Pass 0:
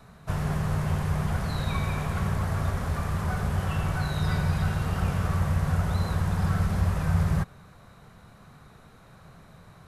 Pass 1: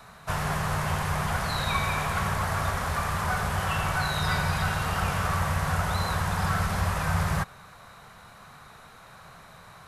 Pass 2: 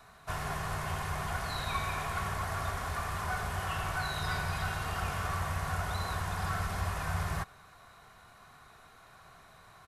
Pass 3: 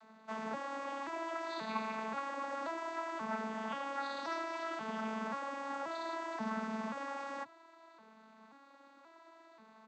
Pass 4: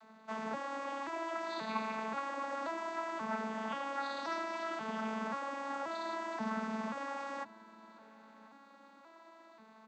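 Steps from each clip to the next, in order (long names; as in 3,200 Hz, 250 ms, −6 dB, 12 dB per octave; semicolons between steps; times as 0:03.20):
drawn EQ curve 330 Hz 0 dB, 560 Hz +6 dB, 920 Hz +11 dB; level −3.5 dB
comb filter 2.8 ms, depth 34%; level −7.5 dB
vocoder with an arpeggio as carrier major triad, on A3, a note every 532 ms; level −2.5 dB
feedback echo with a low-pass in the loop 1,043 ms, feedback 36%, level −22 dB; level +1 dB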